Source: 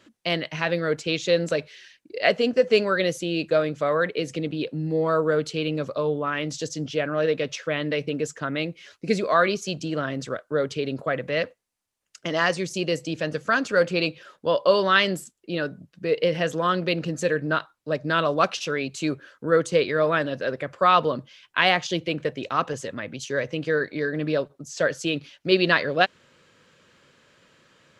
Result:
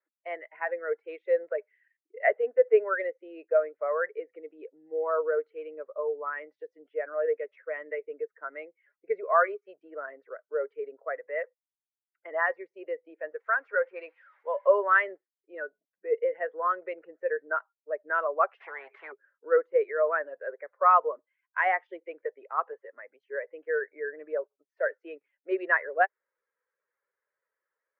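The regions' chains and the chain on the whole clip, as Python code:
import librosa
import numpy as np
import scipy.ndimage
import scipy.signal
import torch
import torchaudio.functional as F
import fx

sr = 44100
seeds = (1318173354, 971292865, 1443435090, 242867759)

y = fx.chain(x, sr, fx.crossing_spikes(level_db=-22.5),
    fx.low_shelf(hz=290.0, db=-11.0), at=(13.4, 14.67))
y = fx.chain(y, sr, fx.band_shelf(hz=5800.0, db=-13.5, octaves=1.3),
    fx.spectral_comp(ratio=4.0), at=(18.6, 19.12))
y = fx.bin_expand(y, sr, power=1.5)
y = scipy.signal.sosfilt(scipy.signal.cheby1(4, 1.0, [410.0, 2000.0], 'bandpass', fs=sr, output='sos'), y)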